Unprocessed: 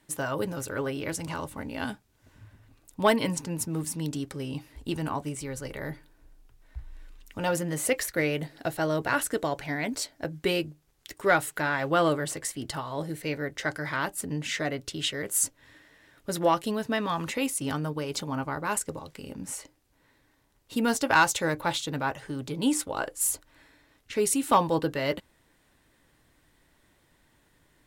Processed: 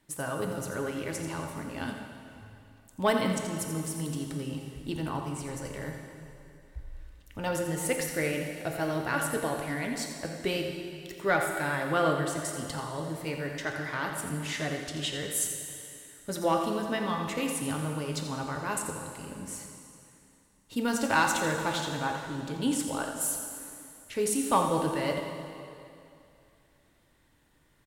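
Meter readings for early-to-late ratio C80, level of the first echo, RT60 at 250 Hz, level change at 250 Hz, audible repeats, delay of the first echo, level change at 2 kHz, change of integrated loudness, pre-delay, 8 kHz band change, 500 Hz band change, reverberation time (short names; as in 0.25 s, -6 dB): 4.0 dB, -9.5 dB, 2.7 s, -1.5 dB, 1, 85 ms, -2.5 dB, -2.5 dB, 8 ms, -2.5 dB, -2.0 dB, 2.6 s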